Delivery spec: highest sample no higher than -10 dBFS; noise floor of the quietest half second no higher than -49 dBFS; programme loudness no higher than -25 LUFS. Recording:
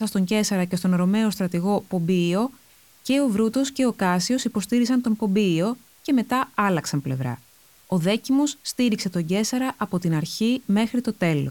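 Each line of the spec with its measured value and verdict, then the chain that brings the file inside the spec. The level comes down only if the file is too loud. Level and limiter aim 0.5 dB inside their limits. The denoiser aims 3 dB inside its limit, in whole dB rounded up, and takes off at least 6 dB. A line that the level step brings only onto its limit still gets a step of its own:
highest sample -6.5 dBFS: fail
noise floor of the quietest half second -54 dBFS: OK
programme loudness -23.0 LUFS: fail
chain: gain -2.5 dB; limiter -10.5 dBFS

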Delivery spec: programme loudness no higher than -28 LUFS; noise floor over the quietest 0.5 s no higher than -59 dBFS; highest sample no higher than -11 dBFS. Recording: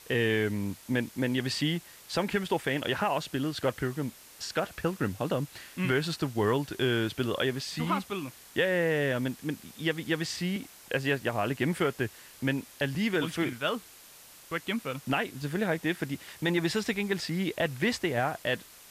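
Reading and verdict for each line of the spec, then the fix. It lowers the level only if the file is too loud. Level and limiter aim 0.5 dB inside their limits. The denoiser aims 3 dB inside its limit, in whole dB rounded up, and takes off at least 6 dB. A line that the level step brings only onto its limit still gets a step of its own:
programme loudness -30.5 LUFS: OK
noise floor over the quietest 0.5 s -52 dBFS: fail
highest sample -16.5 dBFS: OK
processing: denoiser 10 dB, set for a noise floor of -52 dBFS

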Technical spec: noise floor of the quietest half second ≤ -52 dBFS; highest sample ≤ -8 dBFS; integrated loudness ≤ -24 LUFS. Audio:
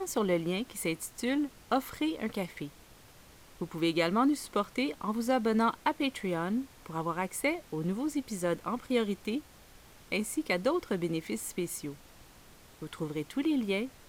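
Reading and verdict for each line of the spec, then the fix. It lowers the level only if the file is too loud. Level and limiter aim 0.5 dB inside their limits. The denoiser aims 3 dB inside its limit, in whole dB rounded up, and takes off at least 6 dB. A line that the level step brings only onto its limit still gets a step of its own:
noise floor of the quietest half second -55 dBFS: OK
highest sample -13.5 dBFS: OK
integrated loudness -32.0 LUFS: OK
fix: none

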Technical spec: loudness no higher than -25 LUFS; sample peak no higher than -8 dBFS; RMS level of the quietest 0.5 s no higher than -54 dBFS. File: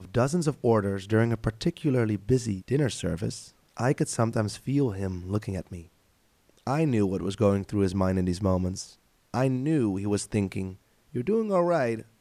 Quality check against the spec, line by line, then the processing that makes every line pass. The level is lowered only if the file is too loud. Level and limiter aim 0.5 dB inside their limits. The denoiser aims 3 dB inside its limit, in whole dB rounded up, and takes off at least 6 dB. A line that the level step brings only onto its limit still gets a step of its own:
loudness -27.5 LUFS: OK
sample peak -11.5 dBFS: OK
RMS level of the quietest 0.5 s -65 dBFS: OK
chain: none

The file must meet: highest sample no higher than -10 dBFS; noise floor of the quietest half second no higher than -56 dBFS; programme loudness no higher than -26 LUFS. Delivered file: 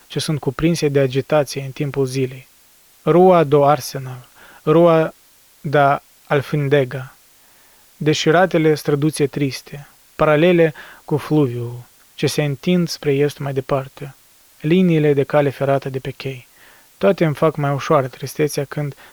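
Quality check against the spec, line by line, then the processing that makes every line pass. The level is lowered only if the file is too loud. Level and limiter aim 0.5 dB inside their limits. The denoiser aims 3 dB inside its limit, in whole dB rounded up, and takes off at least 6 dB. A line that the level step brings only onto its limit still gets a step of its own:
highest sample -1.5 dBFS: fail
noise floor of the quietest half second -51 dBFS: fail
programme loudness -17.5 LUFS: fail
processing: gain -9 dB

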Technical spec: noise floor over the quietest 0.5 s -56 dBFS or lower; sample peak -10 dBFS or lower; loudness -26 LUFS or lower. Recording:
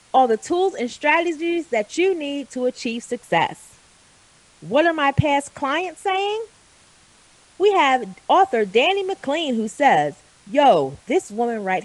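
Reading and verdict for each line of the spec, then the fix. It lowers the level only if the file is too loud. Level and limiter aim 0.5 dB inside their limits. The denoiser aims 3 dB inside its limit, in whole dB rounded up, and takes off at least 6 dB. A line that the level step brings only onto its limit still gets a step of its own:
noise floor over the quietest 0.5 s -53 dBFS: fail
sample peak -3.5 dBFS: fail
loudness -20.0 LUFS: fail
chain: gain -6.5 dB; limiter -10.5 dBFS

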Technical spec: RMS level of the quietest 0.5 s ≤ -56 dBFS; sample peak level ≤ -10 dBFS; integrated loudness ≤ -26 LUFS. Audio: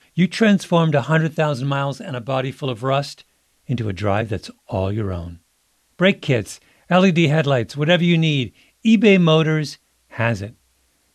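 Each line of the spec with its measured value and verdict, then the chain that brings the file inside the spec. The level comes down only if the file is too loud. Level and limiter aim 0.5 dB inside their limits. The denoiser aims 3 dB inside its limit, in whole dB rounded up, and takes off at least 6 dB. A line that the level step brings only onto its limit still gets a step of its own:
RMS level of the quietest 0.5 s -64 dBFS: OK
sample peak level -4.0 dBFS: fail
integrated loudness -19.0 LUFS: fail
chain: gain -7.5 dB

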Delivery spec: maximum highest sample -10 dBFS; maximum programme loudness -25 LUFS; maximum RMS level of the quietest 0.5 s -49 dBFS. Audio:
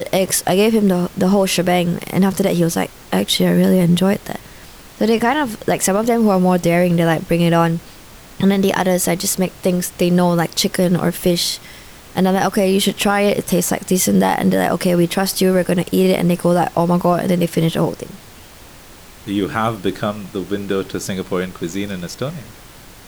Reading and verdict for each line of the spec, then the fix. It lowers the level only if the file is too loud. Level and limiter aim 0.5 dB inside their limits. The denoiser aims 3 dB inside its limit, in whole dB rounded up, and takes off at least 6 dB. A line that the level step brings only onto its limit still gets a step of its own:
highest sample -4.5 dBFS: fail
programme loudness -17.0 LUFS: fail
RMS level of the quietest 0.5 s -40 dBFS: fail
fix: denoiser 6 dB, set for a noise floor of -40 dBFS; gain -8.5 dB

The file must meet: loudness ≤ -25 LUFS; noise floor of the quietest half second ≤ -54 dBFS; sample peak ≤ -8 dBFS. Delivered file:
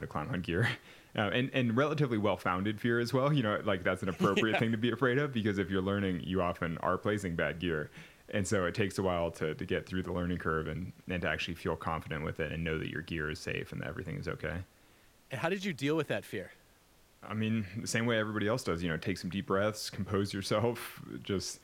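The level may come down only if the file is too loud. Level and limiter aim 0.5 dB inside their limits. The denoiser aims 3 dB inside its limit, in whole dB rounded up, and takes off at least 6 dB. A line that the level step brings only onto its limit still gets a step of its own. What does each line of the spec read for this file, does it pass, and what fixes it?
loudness -33.5 LUFS: OK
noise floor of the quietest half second -64 dBFS: OK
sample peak -15.5 dBFS: OK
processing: none

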